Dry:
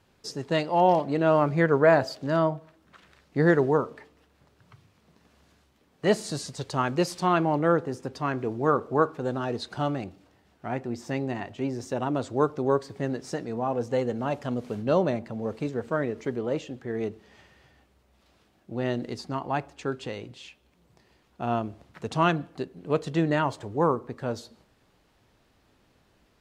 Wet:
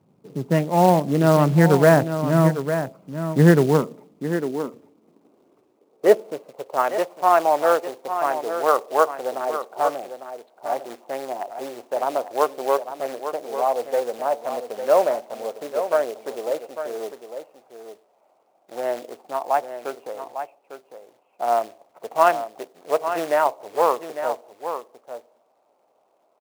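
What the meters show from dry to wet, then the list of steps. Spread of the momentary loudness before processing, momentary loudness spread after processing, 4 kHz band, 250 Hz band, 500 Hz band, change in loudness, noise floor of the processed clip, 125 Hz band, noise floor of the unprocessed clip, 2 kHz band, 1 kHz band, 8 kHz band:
13 LU, 17 LU, +1.0 dB, +3.5 dB, +5.5 dB, +5.0 dB, −64 dBFS, +6.5 dB, −65 dBFS, +3.0 dB, +6.5 dB, +6.0 dB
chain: adaptive Wiener filter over 25 samples
low-pass filter 2,400 Hz 24 dB per octave
floating-point word with a short mantissa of 2 bits
single-tap delay 852 ms −9.5 dB
high-pass filter sweep 160 Hz → 650 Hz, 0:03.69–0:06.99
level +3.5 dB

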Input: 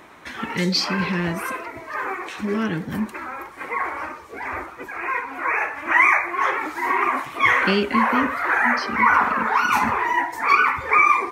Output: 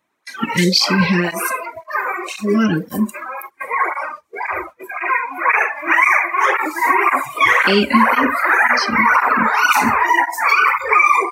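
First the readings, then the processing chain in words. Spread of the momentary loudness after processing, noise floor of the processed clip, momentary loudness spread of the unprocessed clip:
12 LU, −49 dBFS, 15 LU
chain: noise gate −36 dBFS, range −14 dB
noise reduction from a noise print of the clip's start 18 dB
high-shelf EQ 5,000 Hz +9 dB
boost into a limiter +9.5 dB
through-zero flanger with one copy inverted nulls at 1.9 Hz, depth 2.9 ms

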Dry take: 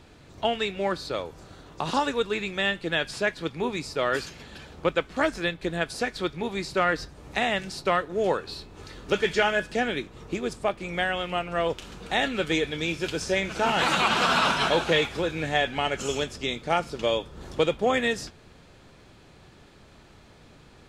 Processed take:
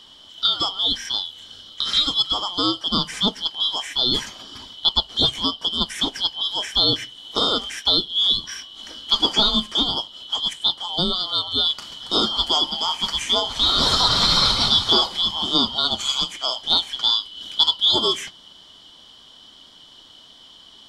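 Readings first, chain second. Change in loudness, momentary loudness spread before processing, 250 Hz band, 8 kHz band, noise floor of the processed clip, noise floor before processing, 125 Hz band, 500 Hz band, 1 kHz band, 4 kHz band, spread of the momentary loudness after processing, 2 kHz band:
+7.0 dB, 10 LU, +1.5 dB, +6.0 dB, −48 dBFS, −53 dBFS, +1.0 dB, −6.0 dB, −0.5 dB, +15.5 dB, 10 LU, −9.0 dB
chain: band-splitting scrambler in four parts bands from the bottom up 2413
level +5 dB

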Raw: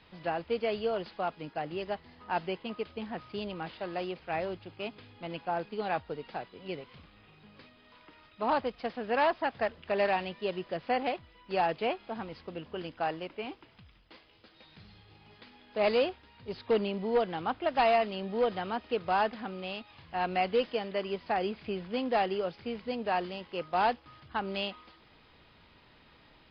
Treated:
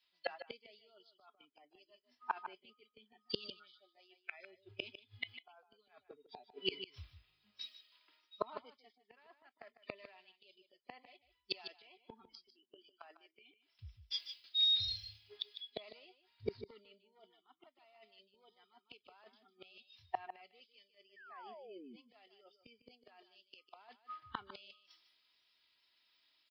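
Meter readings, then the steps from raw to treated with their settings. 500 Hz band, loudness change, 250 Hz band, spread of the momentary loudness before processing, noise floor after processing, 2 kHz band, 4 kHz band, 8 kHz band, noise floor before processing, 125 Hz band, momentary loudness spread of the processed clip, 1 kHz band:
−20.5 dB, −8.0 dB, −20.5 dB, 13 LU, −81 dBFS, −15.0 dB, +2.0 dB, can't be measured, −60 dBFS, −15.5 dB, 20 LU, −19.0 dB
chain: noise reduction from a noise print of the clip's start 26 dB
spectral tilt +4.5 dB per octave
comb filter 3 ms, depth 41%
reversed playback
downward compressor 16 to 1, threshold −42 dBFS, peak gain reduction 23 dB
reversed playback
sound drawn into the spectrogram fall, 0:21.16–0:21.96, 210–1,900 Hz −39 dBFS
gate with flip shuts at −46 dBFS, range −31 dB
on a send: single-tap delay 152 ms −9 dB
on the sum: multiband upward and downward expander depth 100%
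level +16 dB

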